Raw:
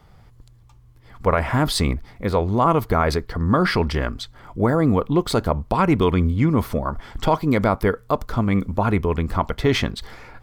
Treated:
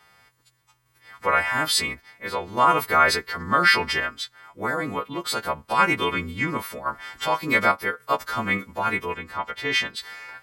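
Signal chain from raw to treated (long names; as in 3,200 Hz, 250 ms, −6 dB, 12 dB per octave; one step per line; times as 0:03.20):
every partial snapped to a pitch grid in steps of 2 semitones
high-pass filter 320 Hz 6 dB per octave
parametric band 1,900 Hz +9.5 dB 1.7 octaves
sample-and-hold tremolo 3.5 Hz
0:09.13–0:09.95: high-shelf EQ 5,100 Hz → 8,800 Hz −8 dB
level −3.5 dB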